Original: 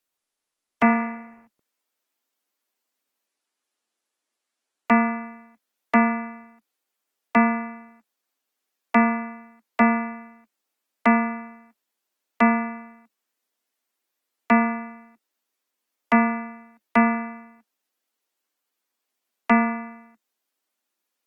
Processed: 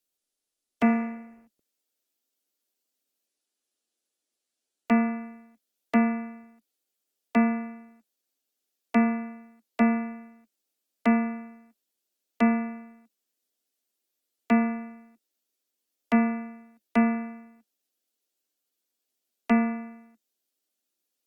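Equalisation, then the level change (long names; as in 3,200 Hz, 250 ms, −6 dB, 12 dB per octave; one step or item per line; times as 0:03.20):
graphic EQ with 10 bands 125 Hz −6 dB, 1,000 Hz −11 dB, 2,000 Hz −7 dB
0.0 dB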